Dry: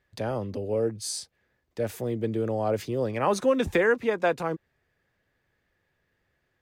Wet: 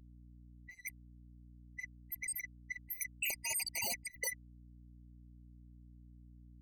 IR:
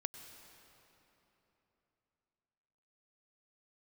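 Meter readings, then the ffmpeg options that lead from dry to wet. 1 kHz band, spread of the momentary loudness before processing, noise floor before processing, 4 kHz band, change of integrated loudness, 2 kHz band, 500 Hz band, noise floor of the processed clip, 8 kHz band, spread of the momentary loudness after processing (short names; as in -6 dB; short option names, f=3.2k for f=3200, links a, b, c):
-23.5 dB, 10 LU, -75 dBFS, -5.5 dB, -12.0 dB, -9.5 dB, -32.5 dB, -58 dBFS, -0.5 dB, 14 LU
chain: -af "afftfilt=real='real(if(lt(b,272),68*(eq(floor(b/68),0)*2+eq(floor(b/68),1)*0+eq(floor(b/68),2)*3+eq(floor(b/68),3)*1)+mod(b,68),b),0)':imag='imag(if(lt(b,272),68*(eq(floor(b/68),0)*2+eq(floor(b/68),1)*0+eq(floor(b/68),2)*3+eq(floor(b/68),3)*1)+mod(b,68),b),0)':win_size=2048:overlap=0.75,bandreject=f=2.1k:w=5.5,afftfilt=real='re*gte(hypot(re,im),0.282)':imag='im*gte(hypot(re,im),0.282)':win_size=1024:overlap=0.75,equalizer=f=110:w=6.3:g=9,areverse,acompressor=threshold=-38dB:ratio=6,areverse,alimiter=level_in=13dB:limit=-24dB:level=0:latency=1:release=45,volume=-13dB,aeval=exprs='val(0)+0.0001*(sin(2*PI*60*n/s)+sin(2*PI*2*60*n/s)/2+sin(2*PI*3*60*n/s)/3+sin(2*PI*4*60*n/s)/4+sin(2*PI*5*60*n/s)/5)':c=same,aeval=exprs='0.015*sin(PI/2*5.01*val(0)/0.015)':c=same,afftfilt=real='re*eq(mod(floor(b*sr/1024/990),2),0)':imag='im*eq(mod(floor(b*sr/1024/990),2),0)':win_size=1024:overlap=0.75,volume=6.5dB"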